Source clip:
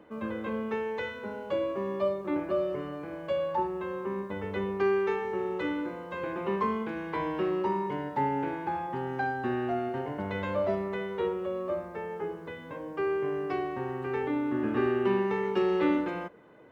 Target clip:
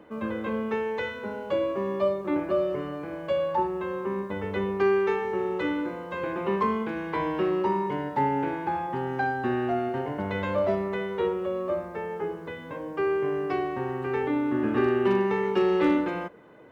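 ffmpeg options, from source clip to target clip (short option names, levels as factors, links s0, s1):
-af "asoftclip=type=hard:threshold=0.119,volume=1.5"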